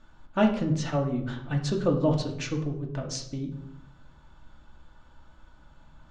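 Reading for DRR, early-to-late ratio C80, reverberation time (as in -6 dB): 1.0 dB, 12.0 dB, 0.70 s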